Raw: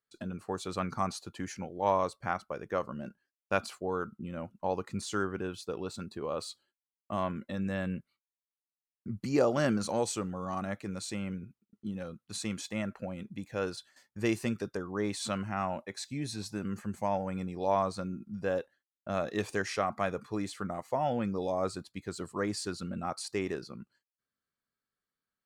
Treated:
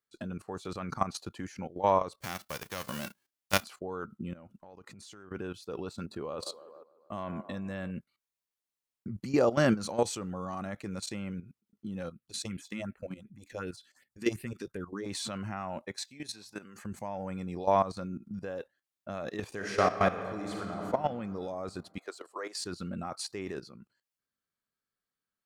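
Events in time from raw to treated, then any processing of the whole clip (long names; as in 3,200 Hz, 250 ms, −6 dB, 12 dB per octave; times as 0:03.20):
0:02.20–0:03.63: spectral envelope flattened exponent 0.3
0:04.33–0:05.31: downward compressor 12 to 1, threshold −45 dBFS
0:05.96–0:07.91: delay with a band-pass on its return 148 ms, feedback 66%, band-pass 660 Hz, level −14 dB
0:12.10–0:15.06: all-pass phaser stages 4, 2.7 Hz, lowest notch 100–1,100 Hz
0:16.04–0:16.83: high-pass filter 690 Hz 6 dB per octave
0:19.51–0:20.84: thrown reverb, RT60 2.7 s, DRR 0 dB
0:21.98–0:22.60: high-pass filter 430 Hz 24 dB per octave
whole clip: dynamic equaliser 8,000 Hz, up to −3 dB, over −54 dBFS, Q 1.5; output level in coarse steps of 14 dB; level +5 dB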